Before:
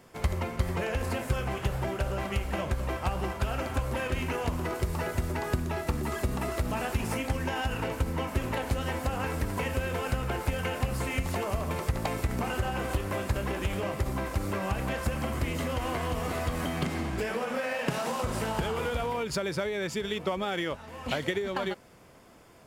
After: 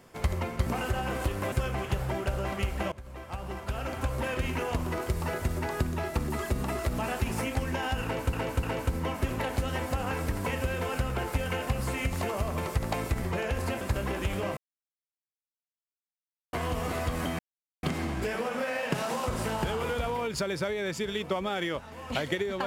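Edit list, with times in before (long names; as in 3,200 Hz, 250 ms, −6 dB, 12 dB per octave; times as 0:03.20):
0:00.66–0:01.25: swap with 0:12.35–0:13.21
0:02.65–0:03.93: fade in, from −18.5 dB
0:07.76–0:08.06: repeat, 3 plays
0:13.97–0:15.93: silence
0:16.79: splice in silence 0.44 s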